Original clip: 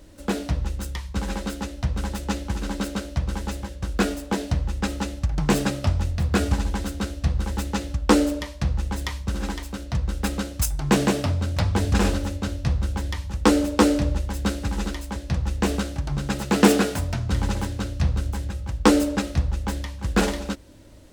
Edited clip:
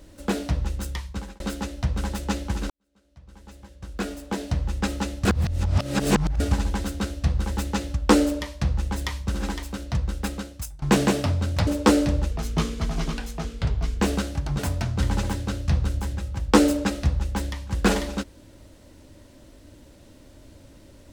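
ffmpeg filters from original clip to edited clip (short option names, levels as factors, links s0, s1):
-filter_complex "[0:a]asplit=10[s0][s1][s2][s3][s4][s5][s6][s7][s8][s9];[s0]atrim=end=1.4,asetpts=PTS-STARTPTS,afade=t=out:st=0.99:d=0.41[s10];[s1]atrim=start=1.4:end=2.7,asetpts=PTS-STARTPTS,afade=t=in:d=0.004:c=hsin,afade=t=out:st=1.296:d=0.004:c=hsin[s11];[s2]atrim=start=2.7:end=5.252,asetpts=PTS-STARTPTS,afade=t=in:d=2.03:c=qua[s12];[s3]atrim=start=5.248:end=6.402,asetpts=PTS-STARTPTS,areverse[s13];[s4]atrim=start=6.398:end=10.82,asetpts=PTS-STARTPTS,afade=t=out:st=3.552:d=0.87:silence=0.105925[s14];[s5]atrim=start=10.82:end=11.672,asetpts=PTS-STARTPTS,afade=t=in:d=0.004:c=hsin:silence=0.105925[s15];[s6]atrim=start=13.598:end=14.244[s16];[s7]atrim=start=14.24:end=15.61,asetpts=PTS-STARTPTS,asetrate=35721,aresample=44100[s17];[s8]atrim=start=15.606:end=16.202[s18];[s9]atrim=start=16.908[s19];[s10][s11][s12]concat=n=3:v=0:a=1[s20];[s20][s13]acrossfade=d=0.004:c1=hsin:c2=hsin[s21];[s14][s15]concat=n=2:v=0:a=1[s22];[s21][s22]acrossfade=d=0.004:c1=hsin:c2=hsin[s23];[s23][s16]acrossfade=d=0.004:c1=hsin:c2=hsin[s24];[s24][s17]acrossfade=d=0.004:c1=hsin:c2=hsin[s25];[s25][s18]acrossfade=d=0.004:c1=hsin:c2=hsin[s26];[s26][s19]acrossfade=d=0.004:c1=hsin:c2=hsin"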